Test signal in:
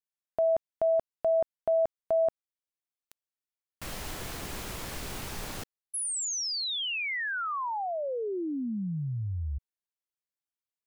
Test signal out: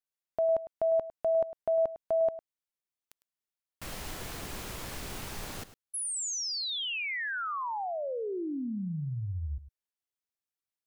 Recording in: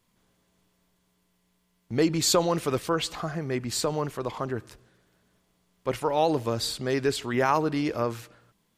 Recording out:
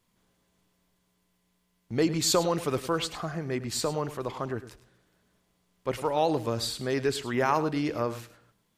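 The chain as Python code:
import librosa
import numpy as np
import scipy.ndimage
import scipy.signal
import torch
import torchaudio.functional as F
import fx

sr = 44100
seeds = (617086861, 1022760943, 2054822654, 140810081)

y = x + 10.0 ** (-14.5 / 20.0) * np.pad(x, (int(104 * sr / 1000.0), 0))[:len(x)]
y = y * librosa.db_to_amplitude(-2.0)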